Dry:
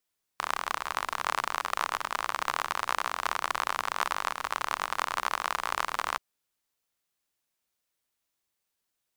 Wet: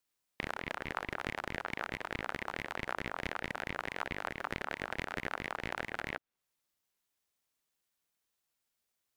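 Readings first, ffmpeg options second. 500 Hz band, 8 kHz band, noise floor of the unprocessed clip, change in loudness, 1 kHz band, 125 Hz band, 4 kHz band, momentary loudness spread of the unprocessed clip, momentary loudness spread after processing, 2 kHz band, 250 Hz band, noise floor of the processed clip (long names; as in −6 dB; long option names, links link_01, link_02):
−1.5 dB, −16.5 dB, −83 dBFS, −8.0 dB, −12.0 dB, +8.5 dB, −9.5 dB, 2 LU, 1 LU, −5.0 dB, +6.0 dB, −85 dBFS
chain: -filter_complex "[0:a]acrossover=split=690|3000[link_01][link_02][link_03];[link_01]acompressor=threshold=-42dB:ratio=4[link_04];[link_02]acompressor=threshold=-33dB:ratio=4[link_05];[link_03]acompressor=threshold=-56dB:ratio=4[link_06];[link_04][link_05][link_06]amix=inputs=3:normalize=0,aeval=exprs='val(0)*sin(2*PI*610*n/s+610*0.65/4.6*sin(2*PI*4.6*n/s))':channel_layout=same,volume=1dB"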